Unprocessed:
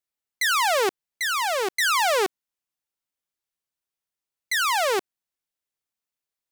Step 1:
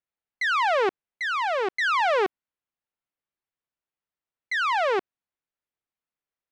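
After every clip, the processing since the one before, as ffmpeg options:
ffmpeg -i in.wav -af "lowpass=2500" out.wav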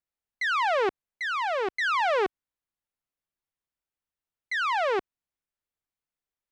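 ffmpeg -i in.wav -af "lowshelf=frequency=88:gain=10,volume=-2.5dB" out.wav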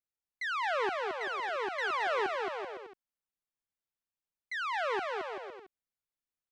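ffmpeg -i in.wav -af "aecho=1:1:220|385|508.8|601.6|671.2:0.631|0.398|0.251|0.158|0.1,volume=-8dB" out.wav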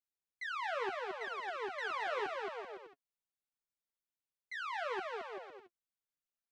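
ffmpeg -i in.wav -af "flanger=delay=4.3:depth=5:regen=32:speed=0.77:shape=sinusoidal,volume=-2.5dB" out.wav

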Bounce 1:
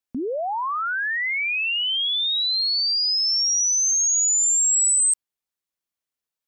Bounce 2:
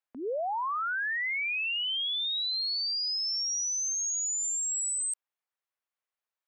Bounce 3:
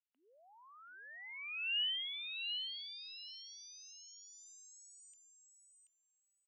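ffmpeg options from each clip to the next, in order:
ffmpeg -i in.wav -filter_complex "[0:a]acrossover=split=470 2600:gain=0.0708 1 0.251[link_01][link_02][link_03];[link_01][link_02][link_03]amix=inputs=3:normalize=0,alimiter=level_in=5.5dB:limit=-24dB:level=0:latency=1,volume=-5.5dB,volume=1.5dB" out.wav
ffmpeg -i in.wav -af "bandpass=frequency=2900:width_type=q:width=8.5:csg=0,aecho=1:1:731|1462|2193:0.531|0.0956|0.0172,volume=-3dB" out.wav

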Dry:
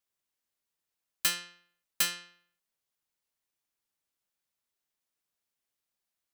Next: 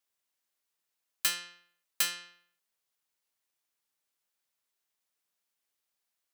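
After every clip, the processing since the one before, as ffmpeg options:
ffmpeg -i in.wav -filter_complex "[0:a]lowshelf=frequency=290:gain=-8.5,asplit=2[link_01][link_02];[link_02]acompressor=threshold=-35dB:ratio=6,volume=-1dB[link_03];[link_01][link_03]amix=inputs=2:normalize=0,volume=-3dB" out.wav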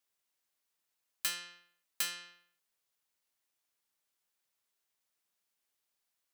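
ffmpeg -i in.wav -af "alimiter=limit=-20dB:level=0:latency=1:release=302" out.wav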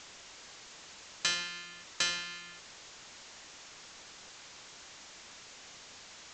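ffmpeg -i in.wav -af "aeval=exprs='val(0)+0.5*0.00473*sgn(val(0))':channel_layout=same,aresample=16000,acrusher=bits=2:mode=log:mix=0:aa=0.000001,aresample=44100,volume=6dB" out.wav

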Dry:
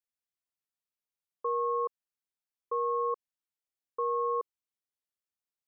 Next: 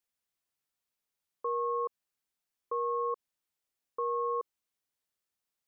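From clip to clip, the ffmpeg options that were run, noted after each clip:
ffmpeg -i in.wav -af "alimiter=level_in=7dB:limit=-24dB:level=0:latency=1,volume=-7dB,volume=5.5dB" out.wav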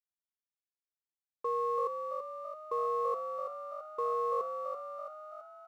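ffmpeg -i in.wav -filter_complex "[0:a]aeval=exprs='sgn(val(0))*max(abs(val(0))-0.00126,0)':channel_layout=same,asplit=9[link_01][link_02][link_03][link_04][link_05][link_06][link_07][link_08][link_09];[link_02]adelay=333,afreqshift=48,volume=-6dB[link_10];[link_03]adelay=666,afreqshift=96,volume=-10.7dB[link_11];[link_04]adelay=999,afreqshift=144,volume=-15.5dB[link_12];[link_05]adelay=1332,afreqshift=192,volume=-20.2dB[link_13];[link_06]adelay=1665,afreqshift=240,volume=-24.9dB[link_14];[link_07]adelay=1998,afreqshift=288,volume=-29.7dB[link_15];[link_08]adelay=2331,afreqshift=336,volume=-34.4dB[link_16];[link_09]adelay=2664,afreqshift=384,volume=-39.1dB[link_17];[link_01][link_10][link_11][link_12][link_13][link_14][link_15][link_16][link_17]amix=inputs=9:normalize=0" out.wav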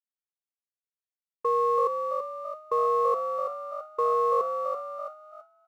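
ffmpeg -i in.wav -af "agate=range=-33dB:threshold=-39dB:ratio=3:detection=peak,volume=8dB" out.wav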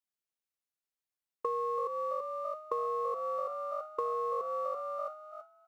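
ffmpeg -i in.wav -af "acompressor=threshold=-31dB:ratio=6" out.wav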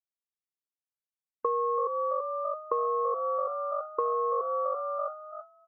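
ffmpeg -i in.wav -af "afftdn=noise_reduction=22:noise_floor=-52,volume=5dB" out.wav

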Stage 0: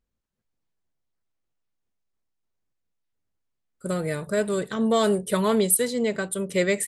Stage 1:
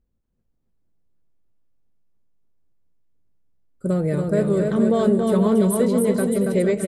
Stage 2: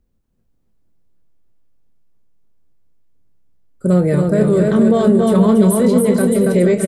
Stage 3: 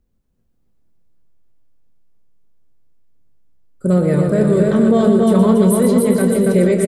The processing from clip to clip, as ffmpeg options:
ffmpeg -i in.wav -af "tiltshelf=frequency=840:gain=8.5,acompressor=threshold=-17dB:ratio=6,aecho=1:1:280|476|613.2|709.2|776.5:0.631|0.398|0.251|0.158|0.1,volume=1dB" out.wav
ffmpeg -i in.wav -filter_complex "[0:a]acrossover=split=250[link_01][link_02];[link_02]alimiter=limit=-17dB:level=0:latency=1:release=11[link_03];[link_01][link_03]amix=inputs=2:normalize=0,asplit=2[link_04][link_05];[link_05]adelay=28,volume=-10.5dB[link_06];[link_04][link_06]amix=inputs=2:normalize=0,volume=7dB" out.wav
ffmpeg -i in.wav -af "aecho=1:1:120:0.422,volume=-1dB" out.wav

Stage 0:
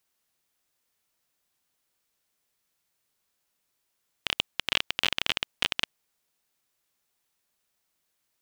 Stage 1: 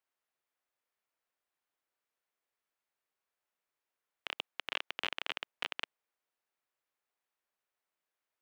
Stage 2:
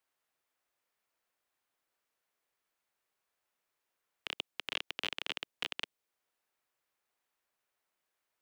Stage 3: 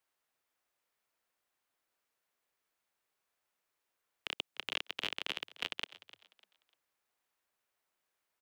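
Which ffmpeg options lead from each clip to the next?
ffmpeg -i in.wav -filter_complex "[0:a]acrossover=split=340 2600:gain=0.224 1 0.251[link_01][link_02][link_03];[link_01][link_02][link_03]amix=inputs=3:normalize=0,volume=-6dB" out.wav
ffmpeg -i in.wav -filter_complex "[0:a]acrossover=split=450|3000[link_01][link_02][link_03];[link_02]acompressor=threshold=-60dB:ratio=1.5[link_04];[link_01][link_04][link_03]amix=inputs=3:normalize=0,volume=4.5dB" out.wav
ffmpeg -i in.wav -filter_complex "[0:a]asplit=4[link_01][link_02][link_03][link_04];[link_02]adelay=299,afreqshift=90,volume=-17.5dB[link_05];[link_03]adelay=598,afreqshift=180,volume=-27.7dB[link_06];[link_04]adelay=897,afreqshift=270,volume=-37.8dB[link_07];[link_01][link_05][link_06][link_07]amix=inputs=4:normalize=0" out.wav

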